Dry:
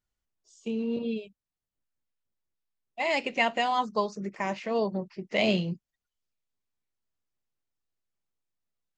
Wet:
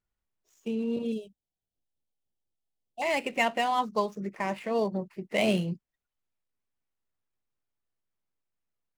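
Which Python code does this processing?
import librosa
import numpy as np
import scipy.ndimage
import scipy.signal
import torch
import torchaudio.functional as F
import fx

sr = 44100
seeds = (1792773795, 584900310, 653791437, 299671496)

y = scipy.ndimage.median_filter(x, 9, mode='constant')
y = fx.ellip_bandstop(y, sr, low_hz=840.0, high_hz=3000.0, order=3, stop_db=40, at=(1.12, 3.02))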